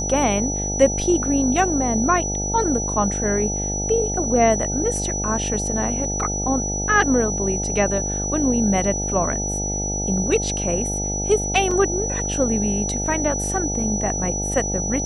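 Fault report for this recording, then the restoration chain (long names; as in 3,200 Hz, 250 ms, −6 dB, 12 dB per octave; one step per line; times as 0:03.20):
mains buzz 50 Hz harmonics 17 −27 dBFS
whistle 5,900 Hz −25 dBFS
0:11.71: drop-out 3.5 ms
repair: hum removal 50 Hz, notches 17
notch filter 5,900 Hz, Q 30
repair the gap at 0:11.71, 3.5 ms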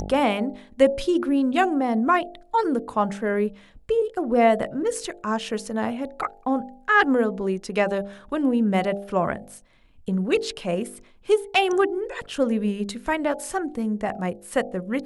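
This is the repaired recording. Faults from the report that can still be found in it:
none of them is left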